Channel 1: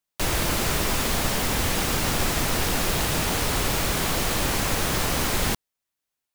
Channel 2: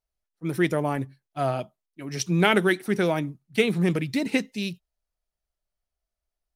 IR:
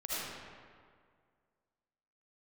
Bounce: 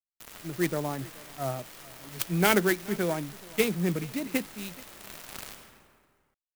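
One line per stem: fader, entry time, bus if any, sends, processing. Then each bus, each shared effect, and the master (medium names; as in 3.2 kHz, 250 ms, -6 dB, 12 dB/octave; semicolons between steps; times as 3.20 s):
-7.0 dB, 0.00 s, send -5 dB, no echo send, peak limiter -22 dBFS, peak gain reduction 10.5 dB; bit crusher 4-bit; auto duck -14 dB, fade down 0.30 s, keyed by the second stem
-5.5 dB, 0.00 s, no send, echo send -22.5 dB, three bands expanded up and down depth 70%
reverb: on, RT60 2.0 s, pre-delay 35 ms
echo: delay 427 ms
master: sampling jitter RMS 0.047 ms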